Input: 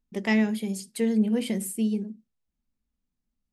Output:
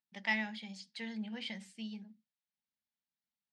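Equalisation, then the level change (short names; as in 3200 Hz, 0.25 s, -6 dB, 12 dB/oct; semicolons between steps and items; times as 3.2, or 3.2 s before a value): speaker cabinet 180–4700 Hz, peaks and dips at 260 Hz -5 dB, 380 Hz -10 dB, 720 Hz -9 dB, 1000 Hz -8 dB, 2600 Hz -4 dB; resonant low shelf 620 Hz -11 dB, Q 3; bell 1200 Hz -9.5 dB 0.69 oct; -1.5 dB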